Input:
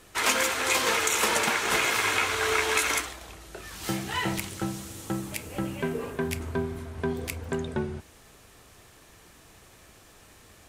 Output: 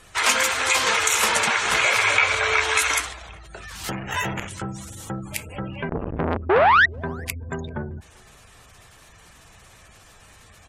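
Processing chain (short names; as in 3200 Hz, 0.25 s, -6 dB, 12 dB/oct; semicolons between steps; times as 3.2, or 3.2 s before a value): bell 330 Hz -8.5 dB 1.3 oct; 3.9–4.48 sample-rate reducer 4600 Hz, jitter 0%; spectral gate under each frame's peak -20 dB strong; 1.83–2.58 small resonant body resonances 570/2300 Hz, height 14 dB -> 11 dB; 5.89–6.37 tilt -4.5 dB/oct; 6.49–6.86 painted sound rise 340–2000 Hz -18 dBFS; speakerphone echo 0.39 s, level -27 dB; core saturation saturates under 1600 Hz; gain +6 dB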